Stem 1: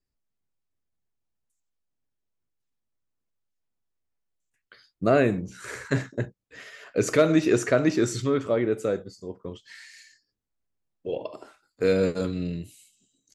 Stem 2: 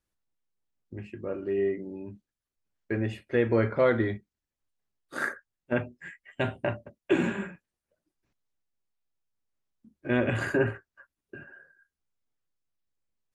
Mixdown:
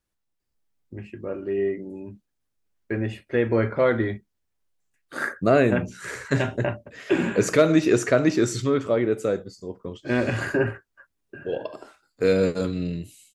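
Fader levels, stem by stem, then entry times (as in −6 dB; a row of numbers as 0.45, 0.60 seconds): +2.0, +2.5 decibels; 0.40, 0.00 seconds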